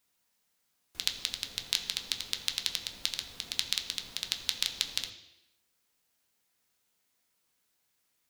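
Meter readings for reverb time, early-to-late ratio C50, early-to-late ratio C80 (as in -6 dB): 0.85 s, 10.0 dB, 11.5 dB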